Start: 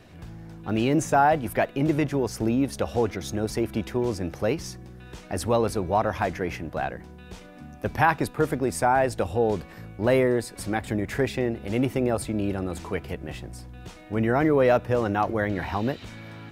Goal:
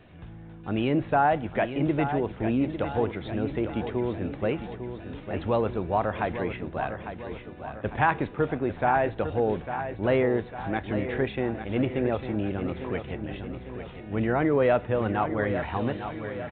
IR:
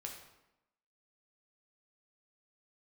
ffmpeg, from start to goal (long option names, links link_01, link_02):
-filter_complex "[0:a]aecho=1:1:851|1702|2553|3404|4255|5106:0.335|0.174|0.0906|0.0471|0.0245|0.0127,asplit=2[link_01][link_02];[1:a]atrim=start_sample=2205,asetrate=61740,aresample=44100,adelay=28[link_03];[link_02][link_03]afir=irnorm=-1:irlink=0,volume=-13dB[link_04];[link_01][link_04]amix=inputs=2:normalize=0,aresample=8000,aresample=44100,volume=-2.5dB"